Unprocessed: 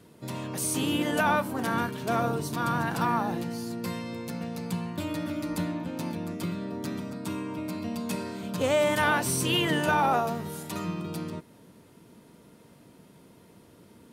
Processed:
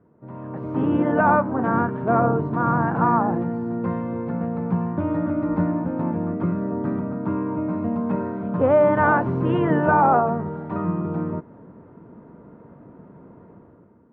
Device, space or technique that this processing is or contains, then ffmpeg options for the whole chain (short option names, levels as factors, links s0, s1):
action camera in a waterproof case: -af "lowpass=f=1400:w=0.5412,lowpass=f=1400:w=1.3066,dynaudnorm=f=130:g=9:m=4.22,volume=0.668" -ar 48000 -c:a aac -b:a 64k